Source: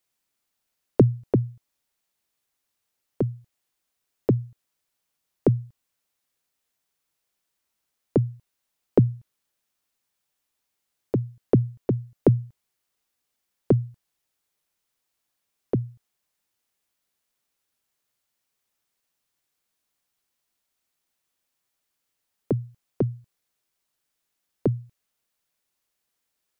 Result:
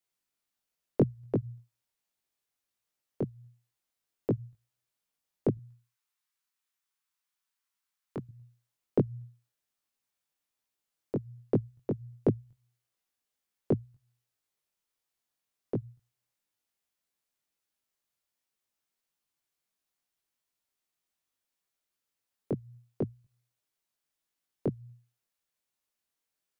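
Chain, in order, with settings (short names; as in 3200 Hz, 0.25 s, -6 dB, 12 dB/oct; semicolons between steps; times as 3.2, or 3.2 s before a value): notches 60/120 Hz; 5.57–8.29 resonant low shelf 790 Hz -8.5 dB, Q 1.5; chorus 1.4 Hz, delay 18 ms, depth 3.1 ms; gain -4 dB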